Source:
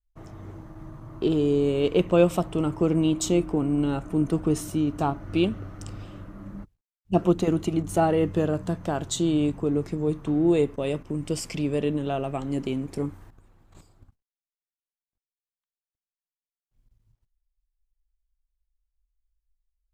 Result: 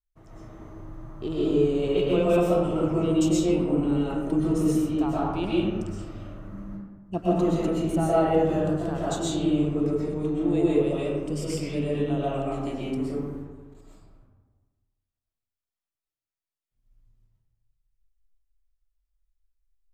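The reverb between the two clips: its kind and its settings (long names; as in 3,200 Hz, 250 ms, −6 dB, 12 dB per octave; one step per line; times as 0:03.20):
comb and all-pass reverb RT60 1.4 s, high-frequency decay 0.45×, pre-delay 85 ms, DRR −7.5 dB
level −8.5 dB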